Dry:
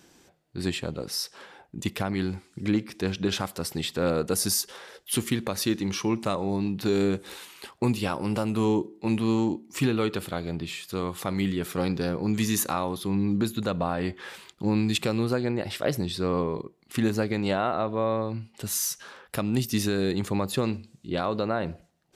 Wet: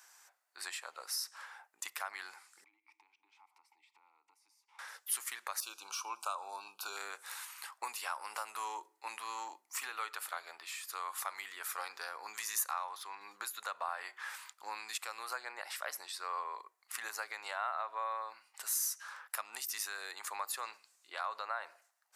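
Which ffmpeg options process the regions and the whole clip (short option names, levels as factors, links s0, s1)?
-filter_complex "[0:a]asettb=1/sr,asplit=3[s0][s1][s2];[s0]atrim=end=2.644[s3];[s1]atrim=start=2.64:end=4.79,asetpts=PTS-STARTPTS,afade=t=in:d=0.004:c=qsin,afade=t=out:st=2.146:d=0.004:c=qsin,acompressor=threshold=0.0158:ratio=10:attack=3.2:release=140:knee=1:detection=peak,asplit=3[s4][s5][s6];[s4]bandpass=f=300:t=q:w=8,volume=1[s7];[s5]bandpass=f=870:t=q:w=8,volume=0.501[s8];[s6]bandpass=f=2240:t=q:w=8,volume=0.355[s9];[s7][s8][s9]amix=inputs=3:normalize=0[s10];[s2]atrim=start=4.786[s11];[s3][s10]acrossfade=d=0.004:c1=hsin:c2=qsin[s12];[s12][s11]acrossfade=d=0.004:c1=qsin:c2=hsin,asettb=1/sr,asplit=3[s13][s14][s15];[s13]atrim=end=5.604[s16];[s14]atrim=start=5.6:end=6.97,asetpts=PTS-STARTPTS,afade=t=in:d=0.004:c=qsin,afade=t=out:st=1.366:d=0.004:c=qsin,deesser=0.6,asuperstop=centerf=1900:order=12:qfactor=2.5[s17];[s15]atrim=start=6.966[s18];[s16][s17]acrossfade=d=0.004:c1=hsin:c2=qsin[s19];[s19][s18]acrossfade=d=0.004:c1=qsin:c2=hsin,asettb=1/sr,asplit=3[s20][s21][s22];[s20]atrim=end=12.714[s23];[s21]atrim=start=12.71:end=13.21,asetpts=PTS-STARTPTS,afade=t=in:d=0.004:c=qsin,afade=t=out:st=0.496:d=0.004:c=qsin,lowshelf=f=180:g=-11,adynamicsmooth=sensitivity=5:basefreq=6500[s24];[s22]atrim=start=13.206[s25];[s23][s24]acrossfade=d=0.004:c1=hsin:c2=qsin[s26];[s26][s25]acrossfade=d=0.004:c1=qsin:c2=hsin,highpass=f=990:w=0.5412,highpass=f=990:w=1.3066,acompressor=threshold=0.0126:ratio=2,equalizer=f=3300:t=o:w=1.2:g=-11.5,volume=1.41"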